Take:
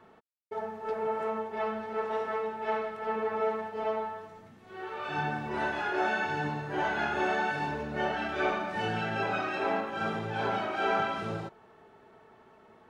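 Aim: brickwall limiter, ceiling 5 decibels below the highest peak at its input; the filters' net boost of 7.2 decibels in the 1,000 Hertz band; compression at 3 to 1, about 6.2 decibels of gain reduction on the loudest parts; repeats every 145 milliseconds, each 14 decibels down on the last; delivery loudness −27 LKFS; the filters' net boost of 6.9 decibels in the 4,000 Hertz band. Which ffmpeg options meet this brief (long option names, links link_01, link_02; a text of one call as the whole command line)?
ffmpeg -i in.wav -af "equalizer=frequency=1000:width_type=o:gain=9,equalizer=frequency=4000:width_type=o:gain=8.5,acompressor=threshold=-28dB:ratio=3,alimiter=limit=-22.5dB:level=0:latency=1,aecho=1:1:145|290:0.2|0.0399,volume=5dB" out.wav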